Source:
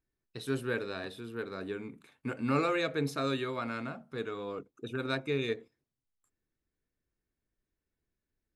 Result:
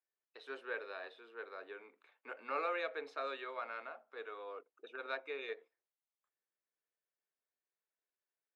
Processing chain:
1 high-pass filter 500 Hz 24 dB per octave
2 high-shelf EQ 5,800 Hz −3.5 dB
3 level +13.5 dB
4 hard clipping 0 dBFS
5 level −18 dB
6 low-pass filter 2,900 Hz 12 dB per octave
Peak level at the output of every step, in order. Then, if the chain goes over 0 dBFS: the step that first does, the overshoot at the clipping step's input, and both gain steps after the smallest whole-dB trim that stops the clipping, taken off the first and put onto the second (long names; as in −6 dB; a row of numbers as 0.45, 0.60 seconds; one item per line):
−19.0, −19.0, −5.5, −5.5, −23.5, −24.0 dBFS
no step passes full scale